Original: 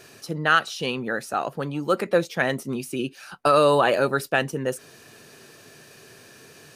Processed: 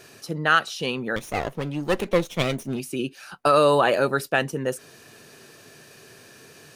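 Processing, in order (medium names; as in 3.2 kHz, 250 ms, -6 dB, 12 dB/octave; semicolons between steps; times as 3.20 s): 1.16–2.80 s: comb filter that takes the minimum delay 0.32 ms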